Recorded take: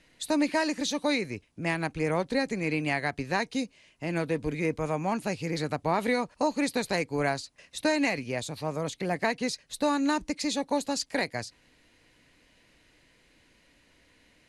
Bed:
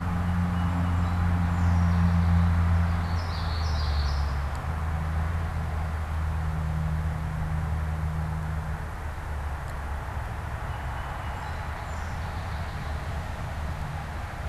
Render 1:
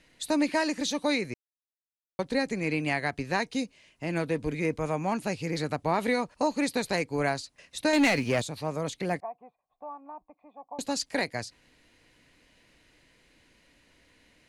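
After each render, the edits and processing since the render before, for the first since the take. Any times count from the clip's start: 1.34–2.19 s: mute; 7.93–8.42 s: waveshaping leveller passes 2; 9.20–10.79 s: cascade formant filter a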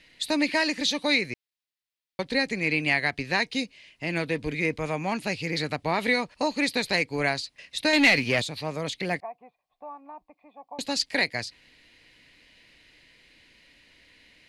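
high-order bell 3 kHz +8 dB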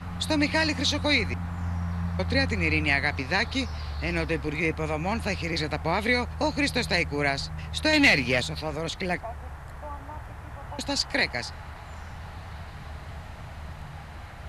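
add bed -7.5 dB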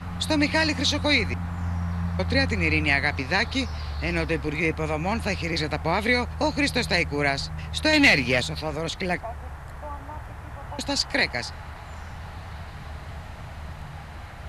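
trim +2 dB

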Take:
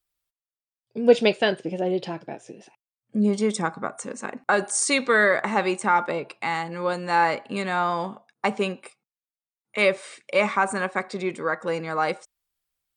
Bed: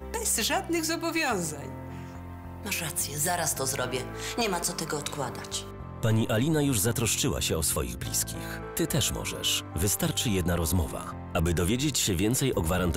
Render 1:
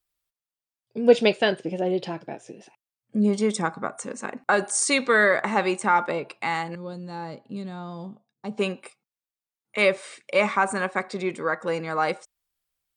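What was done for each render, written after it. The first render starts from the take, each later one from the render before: 6.75–8.58 s: FFT filter 160 Hz 0 dB, 1 kHz -18 dB, 2.2 kHz -23 dB, 3.9 kHz -11 dB, 8.3 kHz -17 dB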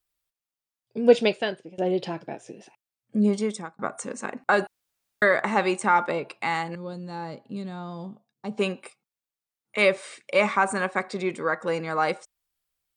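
1.07–1.78 s: fade out, to -20.5 dB; 3.27–3.79 s: fade out; 4.67–5.22 s: room tone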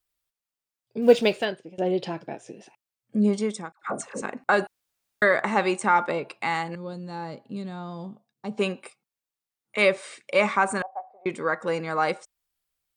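1.02–1.45 s: companding laws mixed up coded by mu; 3.72–4.22 s: phase dispersion lows, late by 112 ms, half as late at 790 Hz; 10.82–11.26 s: Butterworth band-pass 740 Hz, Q 3.8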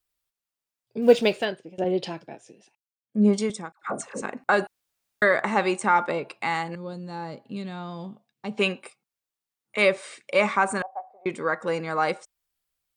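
1.84–3.50 s: three bands expanded up and down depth 70%; 7.46–8.78 s: peaking EQ 2.6 kHz +7 dB 1.3 oct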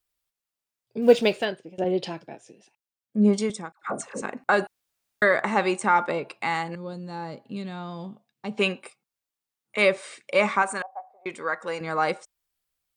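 10.62–11.81 s: bass shelf 420 Hz -11 dB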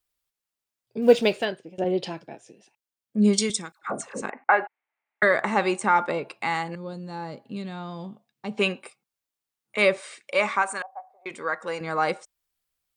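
3.18–3.79 s: FFT filter 370 Hz 0 dB, 760 Hz -7 dB, 1.4 kHz 0 dB, 3.8 kHz +11 dB; 4.30–5.23 s: cabinet simulation 460–2400 Hz, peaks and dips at 500 Hz -4 dB, 850 Hz +7 dB, 2.1 kHz +9 dB; 10.00–11.31 s: bass shelf 320 Hz -10.5 dB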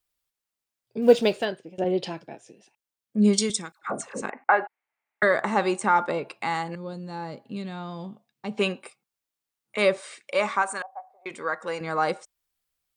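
dynamic bell 2.3 kHz, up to -5 dB, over -37 dBFS, Q 2.2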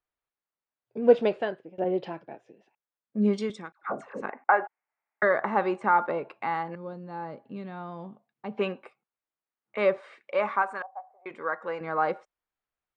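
low-pass 1.7 kHz 12 dB/octave; bass shelf 260 Hz -8 dB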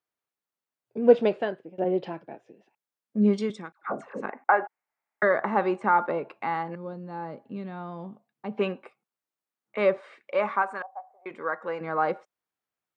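high-pass 160 Hz; bass shelf 210 Hz +8 dB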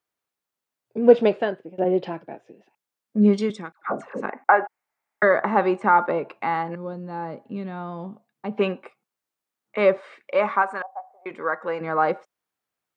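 trim +4.5 dB; peak limiter -3 dBFS, peak gain reduction 1.5 dB

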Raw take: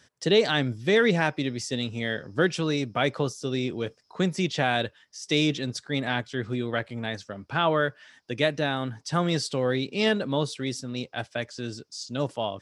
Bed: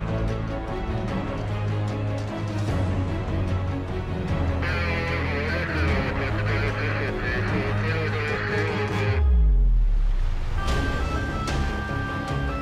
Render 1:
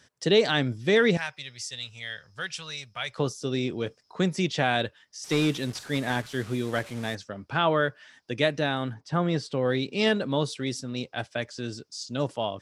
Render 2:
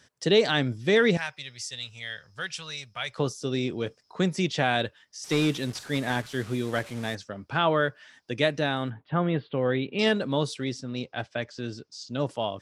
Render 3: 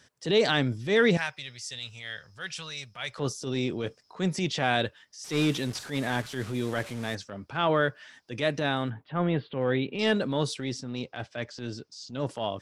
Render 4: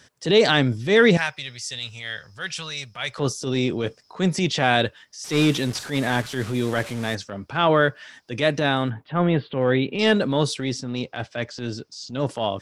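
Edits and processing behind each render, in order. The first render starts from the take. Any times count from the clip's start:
1.17–3.18 s: amplifier tone stack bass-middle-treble 10-0-10; 5.24–7.15 s: one-bit delta coder 64 kbps, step -38.5 dBFS; 8.93–9.64 s: low-pass 1.4 kHz -> 2.2 kHz 6 dB/octave
8.90–9.99 s: steep low-pass 3.5 kHz 48 dB/octave; 10.64–12.27 s: distance through air 83 m
transient shaper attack -8 dB, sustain +2 dB
trim +6.5 dB

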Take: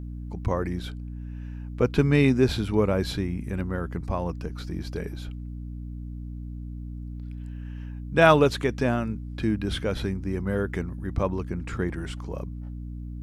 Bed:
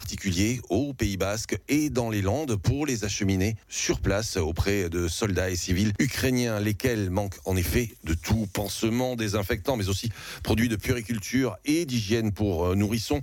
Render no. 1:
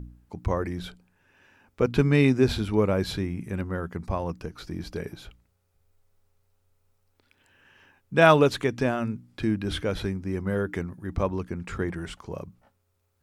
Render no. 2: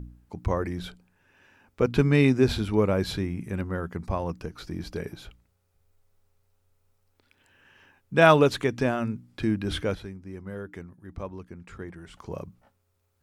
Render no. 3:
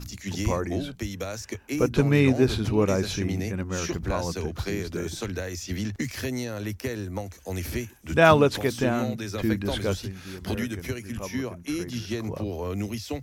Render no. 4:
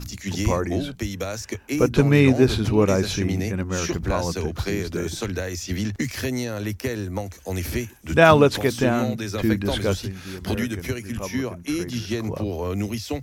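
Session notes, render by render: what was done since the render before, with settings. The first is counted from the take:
de-hum 60 Hz, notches 5
9.95–12.14 s: gain -10 dB
add bed -6 dB
trim +4 dB; peak limiter -2 dBFS, peak gain reduction 2 dB

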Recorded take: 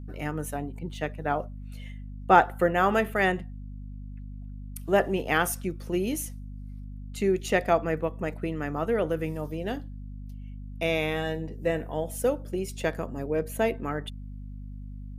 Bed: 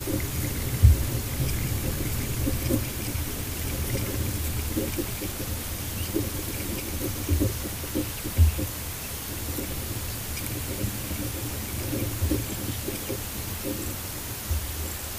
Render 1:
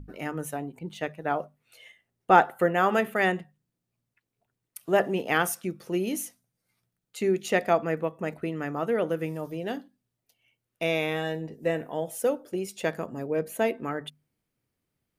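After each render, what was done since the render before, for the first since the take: hum notches 50/100/150/200/250 Hz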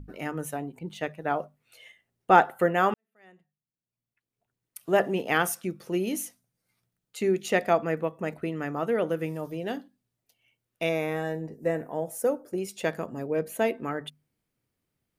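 2.94–4.87 s: fade in quadratic; 10.89–12.58 s: peaking EQ 3.2 kHz -13.5 dB 0.73 oct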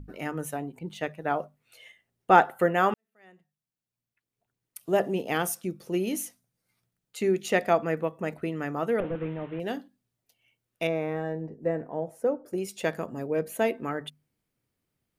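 4.79–5.94 s: peaking EQ 1.6 kHz -6.5 dB 1.7 oct; 9.00–9.60 s: one-bit delta coder 16 kbps, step -43 dBFS; 10.87–12.46 s: low-pass 1.2 kHz 6 dB/octave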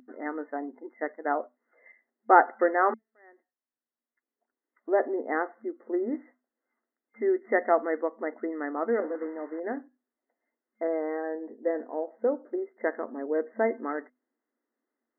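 FFT band-pass 220–2100 Hz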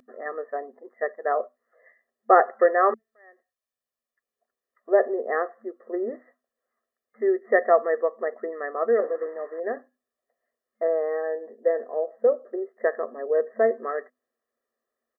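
comb 1.7 ms, depth 88%; dynamic bell 400 Hz, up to +5 dB, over -39 dBFS, Q 2.6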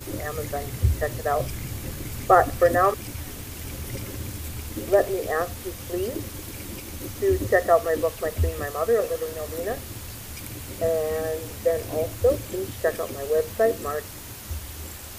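add bed -5 dB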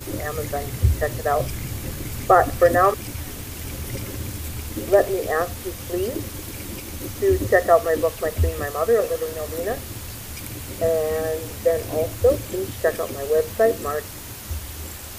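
trim +3 dB; peak limiter -3 dBFS, peak gain reduction 2.5 dB

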